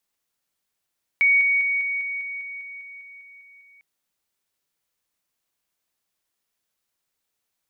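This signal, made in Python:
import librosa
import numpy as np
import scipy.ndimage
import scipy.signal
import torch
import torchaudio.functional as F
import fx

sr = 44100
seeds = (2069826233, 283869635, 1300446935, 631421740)

y = fx.level_ladder(sr, hz=2240.0, from_db=-14.0, step_db=-3.0, steps=13, dwell_s=0.2, gap_s=0.0)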